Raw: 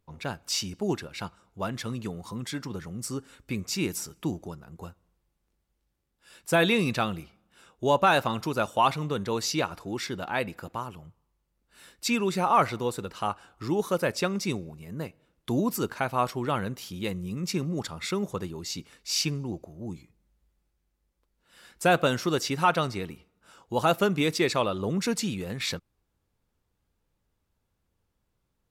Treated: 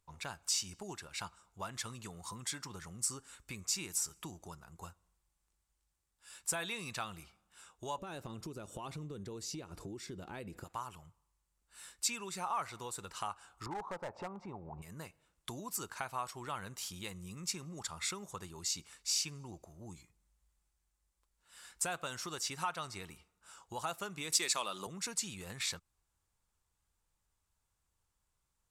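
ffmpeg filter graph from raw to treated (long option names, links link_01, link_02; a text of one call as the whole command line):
ffmpeg -i in.wav -filter_complex "[0:a]asettb=1/sr,asplit=3[link_01][link_02][link_03];[link_01]atrim=end=7.984[link_04];[link_02]atrim=start=7.98:end=10.64,asetpts=PTS-STARTPTS,afade=type=in:duration=0.004:curve=qsin,afade=type=out:start_time=2.656:duration=0.004:curve=qsin,acompressor=threshold=-41dB:ratio=2:attack=3.2:release=140:knee=1:detection=peak,lowshelf=frequency=590:width_type=q:width=1.5:gain=13.5[link_05];[link_03]atrim=start=10.636[link_06];[link_04][link_05]acrossfade=duration=0.004:curve1=hsin:curve2=qsin[link_07];[link_07][link_06]acrossfade=duration=0.004:curve1=qsin:curve2=hsin,asettb=1/sr,asplit=3[link_08][link_09][link_10];[link_08]atrim=end=13.664[link_11];[link_09]atrim=start=13.66:end=14.82,asetpts=PTS-STARTPTS,afade=type=in:duration=0.004:curve=qsin,afade=type=out:start_time=1.156:duration=0.004:curve=qsin,lowpass=frequency=840:width_type=q:width=3.8,acompressor=mode=upward:threshold=-25dB:ratio=2.5:attack=3.2:release=140:knee=2.83:detection=peak,volume=19.5dB,asoftclip=hard,volume=-19.5dB[link_12];[link_10]atrim=start=14.816[link_13];[link_11][link_12]acrossfade=duration=0.004:curve1=hsin:curve2=qsin[link_14];[link_14][link_13]acrossfade=duration=0.004:curve1=qsin:curve2=hsin,asettb=1/sr,asplit=3[link_15][link_16][link_17];[link_15]atrim=end=24.324[link_18];[link_16]atrim=start=24.32:end=24.87,asetpts=PTS-STARTPTS,afade=type=in:duration=0.004:curve=qsin,afade=type=out:start_time=0.546:duration=0.004:curve=qsin,highpass=frequency=170:width=0.5412,highpass=frequency=170:width=1.3066,highshelf=frequency=2800:gain=10.5,acontrast=54[link_19];[link_17]atrim=start=24.866[link_20];[link_18][link_19]acrossfade=duration=0.004:curve1=hsin:curve2=qsin[link_21];[link_21][link_20]acrossfade=duration=0.004:curve1=qsin:curve2=hsin,acompressor=threshold=-33dB:ratio=3,equalizer=frequency=125:width_type=o:width=1:gain=-4,equalizer=frequency=250:width_type=o:width=1:gain=-8,equalizer=frequency=500:width_type=o:width=1:gain=-6,equalizer=frequency=1000:width_type=o:width=1:gain=4,equalizer=frequency=8000:width_type=o:width=1:gain=11,volume=-5dB" out.wav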